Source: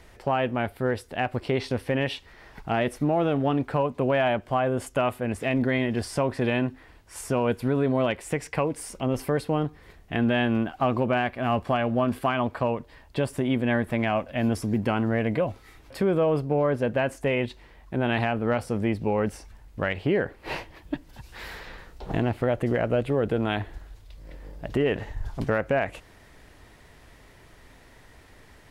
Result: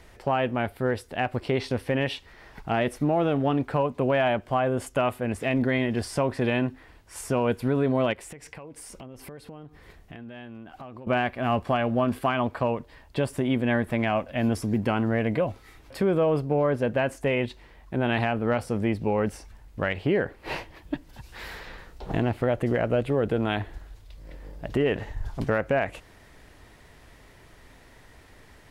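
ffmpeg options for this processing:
-filter_complex "[0:a]asettb=1/sr,asplit=3[a][b][c];[a]atrim=end=8.134[d];[b]atrim=start=8.13:end=11.07,asetpts=PTS-STARTPTS,afade=t=in:d=0.004:c=qsin,afade=t=out:st=2.936:d=0.004:c=qsin,acompressor=threshold=-39dB:ratio=8:attack=3.2:release=140:knee=1:detection=peak[e];[c]atrim=start=11.066[f];[d][e]acrossfade=d=0.004:c1=hsin:c2=qsin[g];[g][f]acrossfade=d=0.004:c1=qsin:c2=hsin"

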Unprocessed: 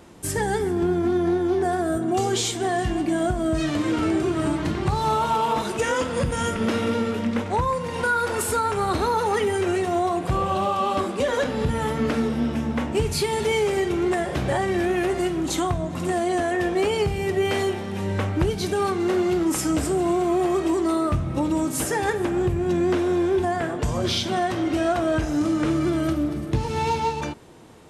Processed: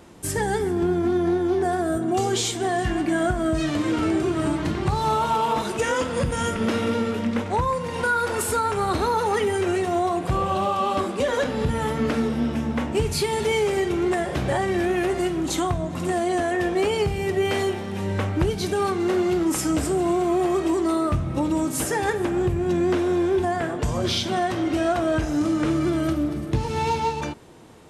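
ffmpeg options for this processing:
-filter_complex "[0:a]asettb=1/sr,asplit=3[a][b][c];[a]atrim=end=2.854[d];[b]atrim=start=2.85:end=3.51,asetpts=PTS-STARTPTS,afade=t=in:d=0.004:c=qsin,afade=t=out:st=0.656:d=0.004:c=qsin,equalizer=f=1.6k:t=o:w=0.95:g=6.5[e];[c]atrim=start=3.506[f];[d][e]acrossfade=d=0.004:c1=hsin:c2=qsin[g];[g][f]acrossfade=d=0.004:c1=qsin:c2=hsin,asettb=1/sr,asplit=3[h][i][j];[h]atrim=end=16.954[k];[i]atrim=start=16.95:end=18.33,asetpts=PTS-STARTPTS,afade=t=in:d=0.004:c=qsin,afade=t=out:st=1.376:d=0.004:c=qsin,aeval=exprs='sgn(val(0))*max(abs(val(0))-0.001,0)':c=same[l];[j]atrim=start=18.326[m];[k][l]acrossfade=d=0.004:c1=hsin:c2=qsin[n];[n][m]acrossfade=d=0.004:c1=qsin:c2=hsin"

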